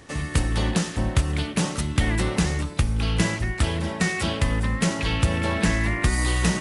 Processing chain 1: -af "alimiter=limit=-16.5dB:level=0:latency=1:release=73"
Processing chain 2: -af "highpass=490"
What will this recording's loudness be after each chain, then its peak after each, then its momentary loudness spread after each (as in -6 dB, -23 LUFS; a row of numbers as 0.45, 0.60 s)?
-27.0, -29.0 LUFS; -16.5, -10.0 dBFS; 2, 6 LU